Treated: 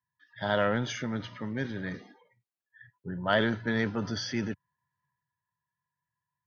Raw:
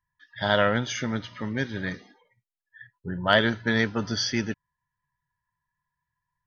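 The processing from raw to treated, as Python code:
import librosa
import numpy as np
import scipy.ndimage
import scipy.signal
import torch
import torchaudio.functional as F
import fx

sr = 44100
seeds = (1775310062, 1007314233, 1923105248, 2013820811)

y = scipy.signal.sosfilt(scipy.signal.butter(4, 91.0, 'highpass', fs=sr, output='sos'), x)
y = fx.high_shelf(y, sr, hz=2300.0, db=-8.0)
y = fx.transient(y, sr, attack_db=0, sustain_db=6)
y = y * librosa.db_to_amplitude(-4.0)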